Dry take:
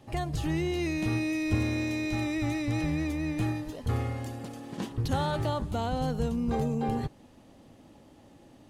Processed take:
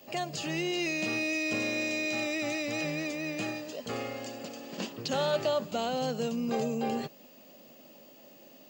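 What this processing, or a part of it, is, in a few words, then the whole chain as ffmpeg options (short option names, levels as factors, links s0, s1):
old television with a line whistle: -filter_complex "[0:a]asettb=1/sr,asplit=3[s0][s1][s2];[s0]atrim=end=4.004[s3];[s1]atrim=start=4:end=5.79,asetpts=PTS-STARTPTS,afade=t=in:d=0.004:c=qsin,afade=t=out:st=1.786:d=0.004:c=qsin,lowpass=8900[s4];[s2]atrim=start=5.786[s5];[s3][s4]acrossfade=d=0.004:c1=hsin:c2=qsin[s6];[s6][s5]acrossfade=d=0.004:c1=qsin:c2=hsin,highpass=f=190:w=0.5412,highpass=f=190:w=1.3066,equalizer=f=300:t=q:w=4:g=-6,equalizer=f=590:t=q:w=4:g=7,equalizer=f=890:t=q:w=4:g=-5,equalizer=f=2700:t=q:w=4:g=9,equalizer=f=4800:t=q:w=4:g=9,equalizer=f=7000:t=q:w=4:g=9,lowpass=f=8100:w=0.5412,lowpass=f=8100:w=1.3066,aeval=exprs='val(0)+0.00158*sin(2*PI*15625*n/s)':c=same"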